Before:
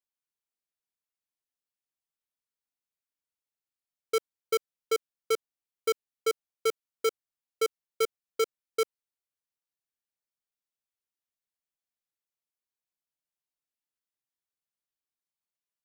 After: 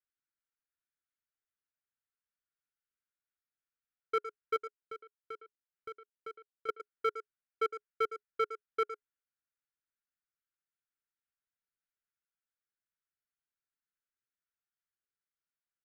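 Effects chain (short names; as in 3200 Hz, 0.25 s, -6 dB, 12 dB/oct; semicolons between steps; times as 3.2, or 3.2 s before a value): EQ curve 420 Hz 0 dB, 630 Hz -16 dB, 940 Hz -12 dB, 1400 Hz +5 dB, 7300 Hz -26 dB; 4.56–6.69 compressor 2:1, threshold -51 dBFS, peak gain reduction 14.5 dB; bell 270 Hz -7.5 dB 1.7 oct; speakerphone echo 0.11 s, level -11 dB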